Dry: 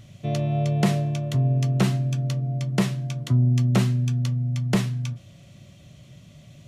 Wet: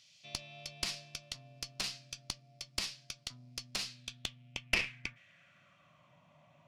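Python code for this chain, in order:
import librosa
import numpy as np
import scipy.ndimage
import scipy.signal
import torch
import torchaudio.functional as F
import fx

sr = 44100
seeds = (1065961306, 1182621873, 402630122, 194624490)

y = fx.graphic_eq_31(x, sr, hz=(160, 400, 2500, 4000), db=(4, -12, 5, -3))
y = fx.filter_sweep_bandpass(y, sr, from_hz=4700.0, to_hz=940.0, start_s=3.86, end_s=6.19, q=4.0)
y = fx.cheby_harmonics(y, sr, harmonics=(4,), levels_db=(-12,), full_scale_db=-22.0)
y = y * 10.0 ** (5.5 / 20.0)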